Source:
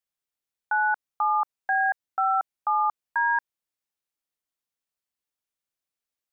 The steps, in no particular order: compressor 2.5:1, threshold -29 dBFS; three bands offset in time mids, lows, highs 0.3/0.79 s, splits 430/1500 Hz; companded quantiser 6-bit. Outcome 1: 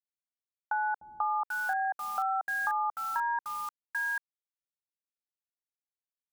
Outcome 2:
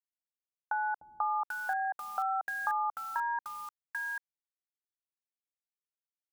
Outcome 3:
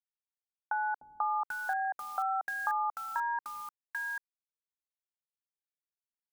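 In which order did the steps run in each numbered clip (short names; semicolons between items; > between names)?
companded quantiser > three bands offset in time > compressor; companded quantiser > compressor > three bands offset in time; compressor > companded quantiser > three bands offset in time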